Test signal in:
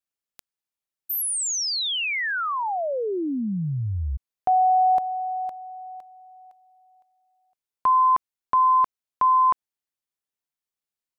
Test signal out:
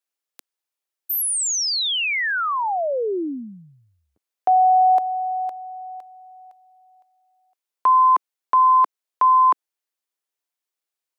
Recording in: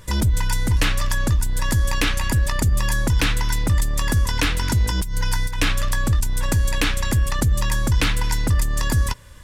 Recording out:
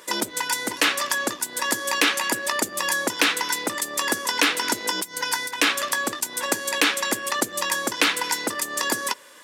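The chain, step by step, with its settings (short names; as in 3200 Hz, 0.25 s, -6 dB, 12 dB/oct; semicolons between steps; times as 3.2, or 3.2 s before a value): HPF 310 Hz 24 dB/oct; gain +3.5 dB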